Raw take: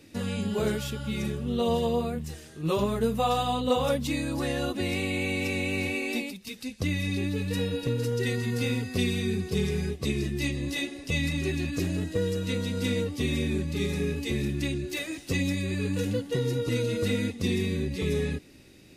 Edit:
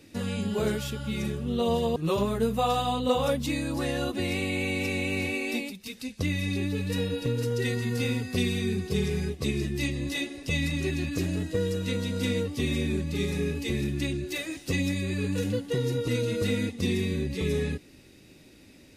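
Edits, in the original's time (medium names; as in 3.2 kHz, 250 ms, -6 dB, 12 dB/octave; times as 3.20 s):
1.96–2.57 s: delete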